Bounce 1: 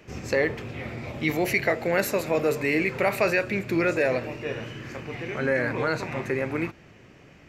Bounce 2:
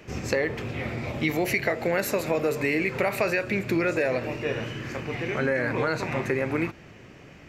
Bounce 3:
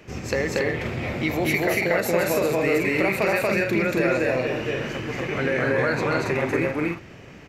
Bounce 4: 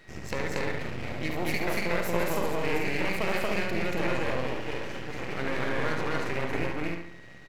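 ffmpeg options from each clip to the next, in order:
ffmpeg -i in.wav -af "acompressor=threshold=-25dB:ratio=4,volume=3.5dB" out.wav
ffmpeg -i in.wav -af "aecho=1:1:233.2|279.9:1|0.631" out.wav
ffmpeg -i in.wav -filter_complex "[0:a]aeval=exprs='val(0)+0.00501*sin(2*PI*1900*n/s)':channel_layout=same,aeval=exprs='max(val(0),0)':channel_layout=same,asplit=2[link_01][link_02];[link_02]adelay=70,lowpass=frequency=4700:poles=1,volume=-5dB,asplit=2[link_03][link_04];[link_04]adelay=70,lowpass=frequency=4700:poles=1,volume=0.41,asplit=2[link_05][link_06];[link_06]adelay=70,lowpass=frequency=4700:poles=1,volume=0.41,asplit=2[link_07][link_08];[link_08]adelay=70,lowpass=frequency=4700:poles=1,volume=0.41,asplit=2[link_09][link_10];[link_10]adelay=70,lowpass=frequency=4700:poles=1,volume=0.41[link_11];[link_01][link_03][link_05][link_07][link_09][link_11]amix=inputs=6:normalize=0,volume=-5dB" out.wav

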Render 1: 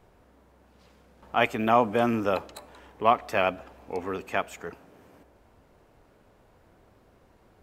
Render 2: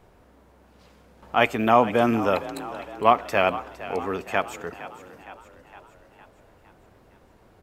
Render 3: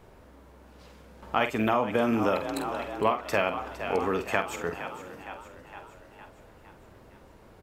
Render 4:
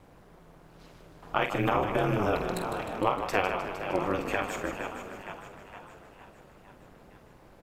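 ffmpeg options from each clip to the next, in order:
ffmpeg -i in.wav -filter_complex "[0:a]asplit=7[link_01][link_02][link_03][link_04][link_05][link_06][link_07];[link_02]adelay=461,afreqshift=41,volume=-15dB[link_08];[link_03]adelay=922,afreqshift=82,volume=-19.9dB[link_09];[link_04]adelay=1383,afreqshift=123,volume=-24.8dB[link_10];[link_05]adelay=1844,afreqshift=164,volume=-29.6dB[link_11];[link_06]adelay=2305,afreqshift=205,volume=-34.5dB[link_12];[link_07]adelay=2766,afreqshift=246,volume=-39.4dB[link_13];[link_01][link_08][link_09][link_10][link_11][link_12][link_13]amix=inputs=7:normalize=0,volume=3.5dB" out.wav
ffmpeg -i in.wav -filter_complex "[0:a]bandreject=frequency=730:width=18,acompressor=threshold=-24dB:ratio=5,asplit=2[link_01][link_02];[link_02]adelay=47,volume=-9dB[link_03];[link_01][link_03]amix=inputs=2:normalize=0,volume=2dB" out.wav
ffmpeg -i in.wav -filter_complex "[0:a]aeval=exprs='val(0)*sin(2*PI*100*n/s)':channel_layout=same,asplit=9[link_01][link_02][link_03][link_04][link_05][link_06][link_07][link_08][link_09];[link_02]adelay=154,afreqshift=-41,volume=-9dB[link_10];[link_03]adelay=308,afreqshift=-82,volume=-13.3dB[link_11];[link_04]adelay=462,afreqshift=-123,volume=-17.6dB[link_12];[link_05]adelay=616,afreqshift=-164,volume=-21.9dB[link_13];[link_06]adelay=770,afreqshift=-205,volume=-26.2dB[link_14];[link_07]adelay=924,afreqshift=-246,volume=-30.5dB[link_15];[link_08]adelay=1078,afreqshift=-287,volume=-34.8dB[link_16];[link_09]adelay=1232,afreqshift=-328,volume=-39.1dB[link_17];[link_01][link_10][link_11][link_12][link_13][link_14][link_15][link_16][link_17]amix=inputs=9:normalize=0,volume=1dB" out.wav

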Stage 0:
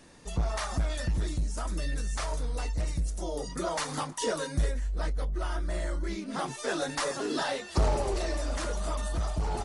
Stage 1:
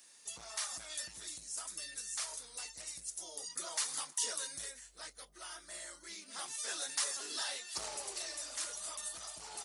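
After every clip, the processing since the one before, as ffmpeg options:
ffmpeg -i in.wav -af "aderivative,volume=3dB" out.wav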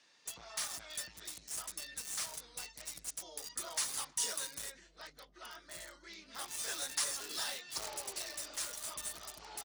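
ffmpeg -i in.wav -filter_complex "[0:a]acrossover=split=320|5300[link_01][link_02][link_03];[link_01]aecho=1:1:1190:0.668[link_04];[link_03]acrusher=bits=6:mix=0:aa=0.000001[link_05];[link_04][link_02][link_05]amix=inputs=3:normalize=0" out.wav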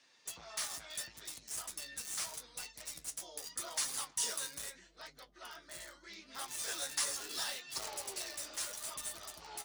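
ffmpeg -i in.wav -af "flanger=delay=7.4:depth=7:regen=50:speed=0.78:shape=sinusoidal,volume=4dB" out.wav

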